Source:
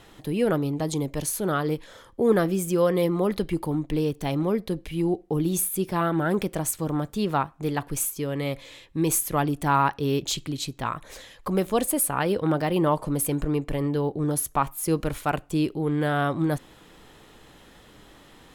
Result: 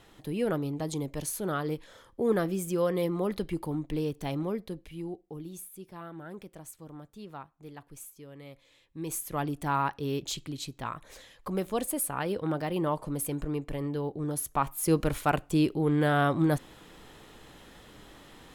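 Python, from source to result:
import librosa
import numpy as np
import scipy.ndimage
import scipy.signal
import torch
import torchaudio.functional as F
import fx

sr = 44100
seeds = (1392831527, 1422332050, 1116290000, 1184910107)

y = fx.gain(x, sr, db=fx.line((4.32, -6.0), (5.66, -19.0), (8.62, -19.0), (9.43, -7.0), (14.34, -7.0), (14.91, -0.5)))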